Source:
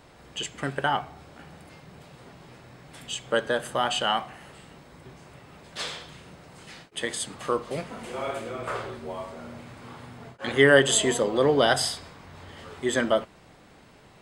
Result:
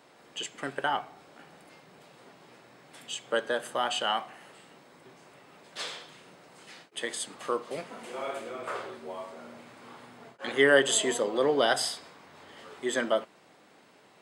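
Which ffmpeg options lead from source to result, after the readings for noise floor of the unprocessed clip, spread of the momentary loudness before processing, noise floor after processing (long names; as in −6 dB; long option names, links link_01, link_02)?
−53 dBFS, 23 LU, −59 dBFS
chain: -af "highpass=250,volume=-3.5dB"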